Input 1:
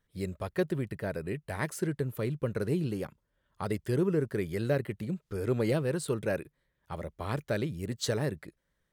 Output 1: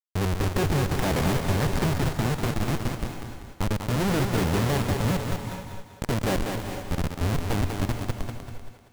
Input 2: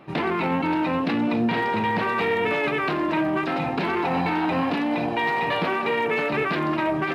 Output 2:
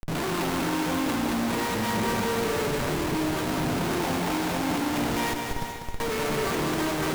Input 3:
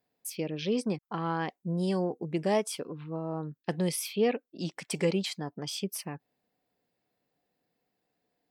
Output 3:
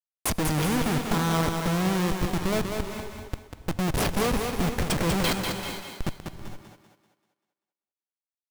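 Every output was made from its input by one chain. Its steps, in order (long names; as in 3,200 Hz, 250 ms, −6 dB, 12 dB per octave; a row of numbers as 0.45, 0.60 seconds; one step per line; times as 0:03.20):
one scale factor per block 5 bits
low-shelf EQ 240 Hz +8.5 dB
in parallel at −1 dB: downward compressor 12 to 1, threshold −30 dBFS
on the sum: sample-and-hold tremolo 1.5 Hz, depth 90%
comparator with hysteresis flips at −31.5 dBFS
on a send: feedback echo with a high-pass in the loop 194 ms, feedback 41%, high-pass 150 Hz, level −5 dB
on the sum: reverb whose tail is shaped and stops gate 490 ms rising, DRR 8 dB
loudness normalisation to −27 LKFS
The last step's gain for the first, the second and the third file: +7.0, −5.0, +6.5 decibels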